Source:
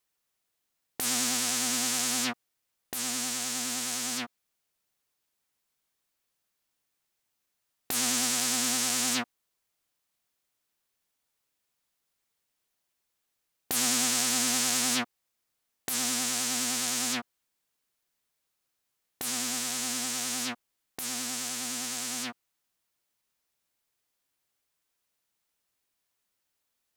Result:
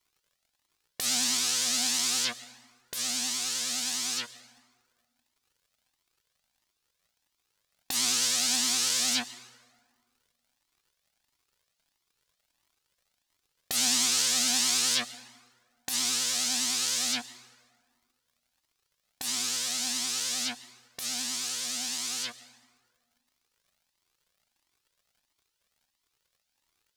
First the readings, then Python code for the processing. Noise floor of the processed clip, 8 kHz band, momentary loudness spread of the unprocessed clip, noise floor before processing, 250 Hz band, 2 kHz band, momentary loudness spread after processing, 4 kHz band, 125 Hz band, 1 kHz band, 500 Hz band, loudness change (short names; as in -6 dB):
-81 dBFS, +1.0 dB, 11 LU, -81 dBFS, -6.0 dB, -1.0 dB, 13 LU, +4.0 dB, -5.5 dB, -3.5 dB, -4.5 dB, +1.5 dB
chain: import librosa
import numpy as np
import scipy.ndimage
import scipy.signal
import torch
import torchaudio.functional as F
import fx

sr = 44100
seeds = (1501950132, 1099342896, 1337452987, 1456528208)

y = fx.peak_eq(x, sr, hz=4400.0, db=9.0, octaves=1.6)
y = fx.dmg_crackle(y, sr, seeds[0], per_s=120.0, level_db=-53.0)
y = fx.rev_plate(y, sr, seeds[1], rt60_s=1.7, hf_ratio=0.6, predelay_ms=105, drr_db=16.0)
y = fx.comb_cascade(y, sr, direction='rising', hz=1.5)